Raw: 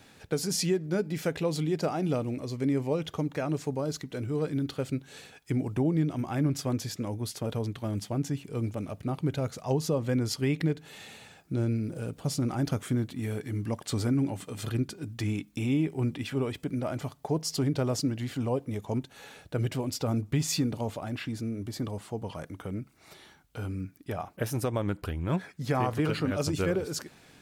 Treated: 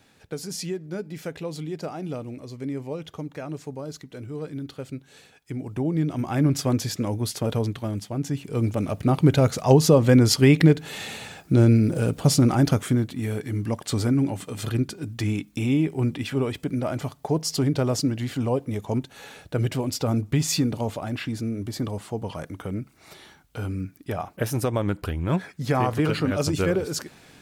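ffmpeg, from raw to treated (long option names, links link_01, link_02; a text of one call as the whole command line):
ffmpeg -i in.wav -af "volume=19dB,afade=type=in:start_time=5.58:duration=0.96:silence=0.298538,afade=type=out:start_time=7.6:duration=0.48:silence=0.446684,afade=type=in:start_time=8.08:duration=1.17:silence=0.251189,afade=type=out:start_time=12.26:duration=0.81:silence=0.446684" out.wav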